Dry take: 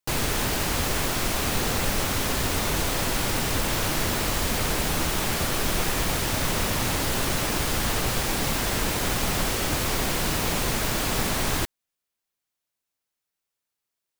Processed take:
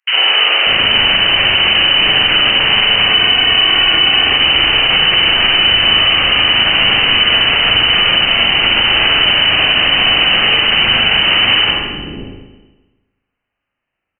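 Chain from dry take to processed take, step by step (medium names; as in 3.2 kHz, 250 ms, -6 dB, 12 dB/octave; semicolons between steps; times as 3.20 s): frequency inversion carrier 3 kHz; 3.01–4.26 s: comb 2.7 ms, depth 49%; three bands offset in time highs, mids, lows 50/590 ms, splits 390/1200 Hz; spring tank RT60 1.2 s, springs 38/47 ms, chirp 50 ms, DRR -2.5 dB; loudness maximiser +13.5 dB; trim -1 dB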